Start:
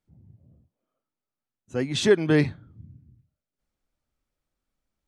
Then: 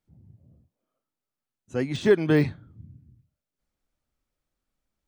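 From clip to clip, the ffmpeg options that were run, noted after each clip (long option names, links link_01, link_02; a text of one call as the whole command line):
ffmpeg -i in.wav -af "deesser=0.9" out.wav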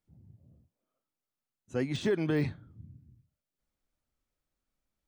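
ffmpeg -i in.wav -af "alimiter=limit=-16.5dB:level=0:latency=1:release=25,volume=-3.5dB" out.wav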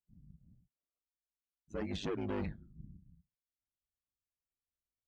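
ffmpeg -i in.wav -af "asoftclip=type=tanh:threshold=-32dB,aeval=exprs='val(0)*sin(2*PI*50*n/s)':channel_layout=same,afftdn=noise_reduction=17:noise_floor=-55,volume=1dB" out.wav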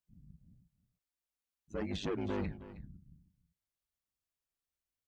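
ffmpeg -i in.wav -af "aecho=1:1:316:0.168,volume=1dB" out.wav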